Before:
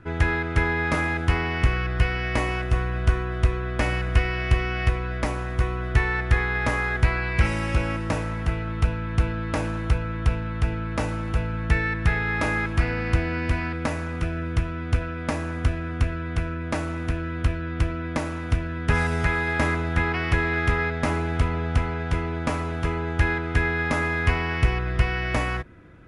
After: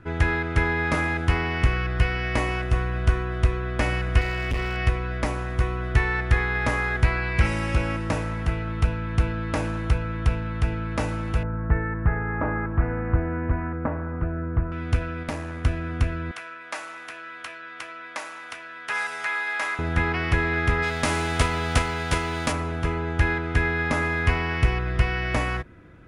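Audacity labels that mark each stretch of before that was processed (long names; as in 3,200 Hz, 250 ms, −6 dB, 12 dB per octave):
4.210000	4.770000	gain into a clipping stage and back gain 21.5 dB
11.430000	14.720000	low-pass filter 1,500 Hz 24 dB per octave
15.230000	15.650000	tube saturation drive 19 dB, bias 0.65
16.310000	19.790000	high-pass filter 950 Hz
20.820000	22.510000	spectral envelope flattened exponent 0.6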